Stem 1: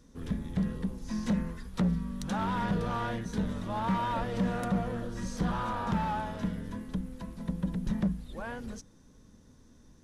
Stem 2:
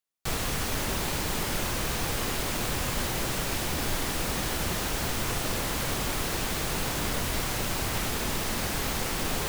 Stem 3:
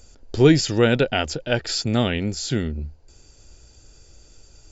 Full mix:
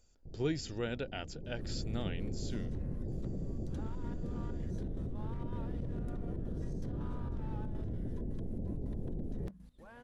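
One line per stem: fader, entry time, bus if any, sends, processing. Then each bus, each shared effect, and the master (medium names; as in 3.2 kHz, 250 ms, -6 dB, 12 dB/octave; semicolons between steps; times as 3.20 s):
-12.5 dB, 1.45 s, no send, trance gate "xxx.xxx.x." 162 bpm -12 dB; peak limiter -32.5 dBFS, peak gain reduction 10 dB
1.30 s -20 dB -> 1.75 s -10 dB, 0.00 s, no send, Gaussian low-pass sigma 21 samples; level flattener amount 100%
-19.5 dB, 0.00 s, no send, none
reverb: none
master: none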